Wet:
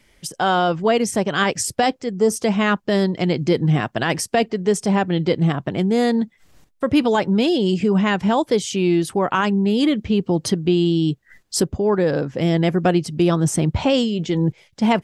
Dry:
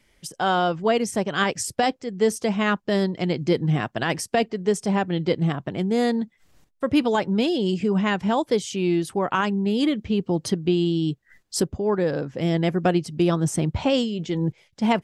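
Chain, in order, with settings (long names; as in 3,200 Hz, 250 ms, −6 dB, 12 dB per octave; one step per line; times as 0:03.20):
gain on a spectral selection 0:02.12–0:02.33, 1,500–4,600 Hz −10 dB
in parallel at −1 dB: brickwall limiter −18 dBFS, peak gain reduction 8.5 dB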